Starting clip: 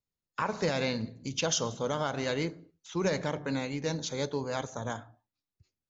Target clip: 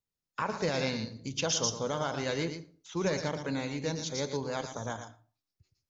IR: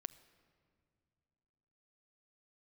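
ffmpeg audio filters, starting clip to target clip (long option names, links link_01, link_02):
-filter_complex "[0:a]asplit=2[link_01][link_02];[link_02]equalizer=frequency=5400:width_type=o:width=0.59:gain=13.5[link_03];[1:a]atrim=start_sample=2205,afade=type=out:start_time=0.17:duration=0.01,atrim=end_sample=7938,adelay=115[link_04];[link_03][link_04]afir=irnorm=-1:irlink=0,volume=-6dB[link_05];[link_01][link_05]amix=inputs=2:normalize=0,volume=-1.5dB"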